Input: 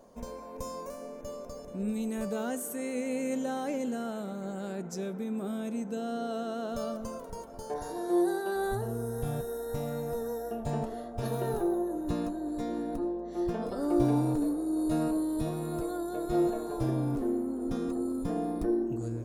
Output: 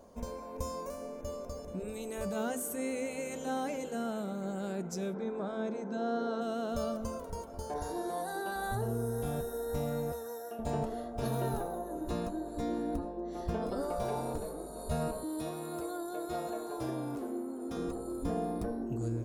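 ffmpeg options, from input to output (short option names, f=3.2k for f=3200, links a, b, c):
-filter_complex "[0:a]asplit=3[a][b][c];[a]afade=t=out:st=5.14:d=0.02[d];[b]highpass=170,equalizer=f=390:t=q:w=4:g=8,equalizer=f=600:t=q:w=4:g=4,equalizer=f=960:t=q:w=4:g=7,equalizer=f=1.6k:t=q:w=4:g=5,equalizer=f=2.8k:t=q:w=4:g=-9,lowpass=f=5.6k:w=0.5412,lowpass=f=5.6k:w=1.3066,afade=t=in:st=5.14:d=0.02,afade=t=out:st=6.4:d=0.02[e];[c]afade=t=in:st=6.4:d=0.02[f];[d][e][f]amix=inputs=3:normalize=0,asettb=1/sr,asplit=3[g][h][i];[g]atrim=end=10.124[j];[h]atrim=start=10.12:end=10.59,asetpts=PTS-STARTPTS,afade=t=in:d=0.004:c=qsin,afade=t=out:st=0.466:d=0.004:c=qsin,highpass=f=940:p=1[k];[i]atrim=start=10.586[l];[j][k]acrossfade=d=0.004:c1=hsin:c2=qsin[m];[m][l]acrossfade=d=0.004:c1=qsin:c2=hsin,asettb=1/sr,asplit=3[n][o][p];[n]atrim=end=15.234[q];[o]atrim=start=15.23:end=17.76,asetpts=PTS-STARTPTS,afade=t=in:d=0.004:c=qsin,afade=t=out:st=2.526:d=0.004:c=qsin,highpass=f=540:p=1[r];[p]atrim=start=17.756[s];[q][r]acrossfade=d=0.004:c1=hsin:c2=qsin[t];[t][s]acrossfade=d=0.004:c1=qsin:c2=hsin,afftfilt=real='re*lt(hypot(re,im),0.224)':imag='im*lt(hypot(re,im),0.224)':win_size=1024:overlap=0.75,equalizer=f=72:t=o:w=0.35:g=15,bandreject=f=1.8k:w=28"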